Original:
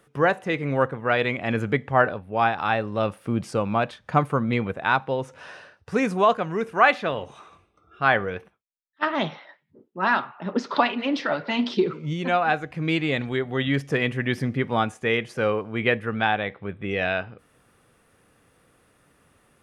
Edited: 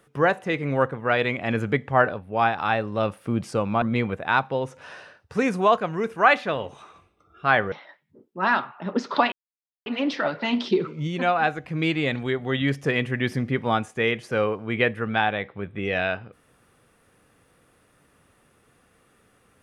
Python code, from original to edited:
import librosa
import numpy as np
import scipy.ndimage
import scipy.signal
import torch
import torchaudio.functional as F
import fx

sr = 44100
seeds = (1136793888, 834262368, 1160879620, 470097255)

y = fx.edit(x, sr, fx.cut(start_s=3.82, length_s=0.57),
    fx.cut(start_s=8.29, length_s=1.03),
    fx.insert_silence(at_s=10.92, length_s=0.54), tone=tone)